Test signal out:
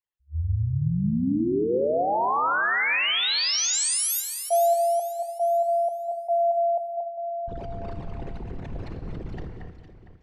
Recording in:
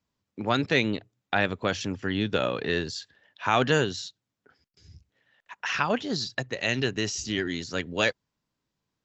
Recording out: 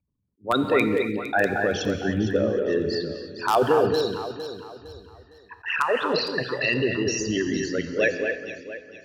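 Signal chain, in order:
spectral envelope exaggerated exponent 3
in parallel at −9 dB: wrap-around overflow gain 12 dB
on the sum: low-pass that shuts in the quiet parts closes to 2,700 Hz, open at −22.5 dBFS
on a send: delay that swaps between a low-pass and a high-pass 229 ms, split 2,300 Hz, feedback 59%, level −5 dB
on the sum: reverb whose tail is shaped and stops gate 330 ms flat, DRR 8 dB
level that may rise only so fast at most 400 dB per second

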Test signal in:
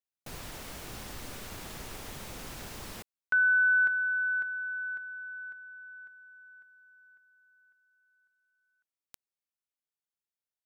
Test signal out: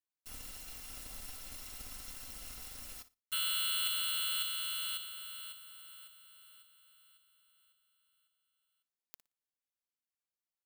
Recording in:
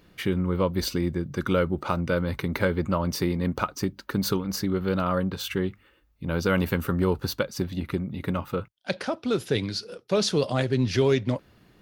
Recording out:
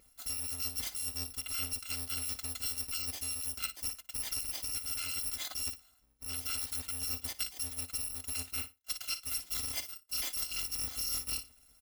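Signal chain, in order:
samples in bit-reversed order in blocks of 256 samples
in parallel at −7 dB: dead-zone distortion −38.5 dBFS
on the sum: flutter between parallel walls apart 10 metres, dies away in 0.24 s
reversed playback
downward compressor 6 to 1, threshold −29 dBFS
reversed playback
dynamic equaliser 3,600 Hz, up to +5 dB, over −47 dBFS, Q 0.86
comb filter 3.9 ms, depth 33%
level −6 dB

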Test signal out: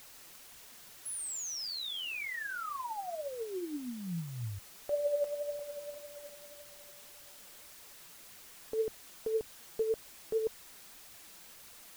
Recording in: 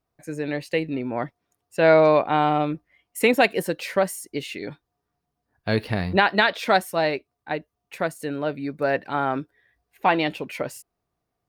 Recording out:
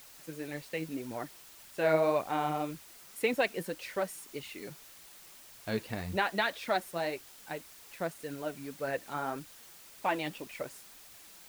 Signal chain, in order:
background noise white −42 dBFS
flanger 1.8 Hz, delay 0.4 ms, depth 5.9 ms, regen +42%
level −7.5 dB

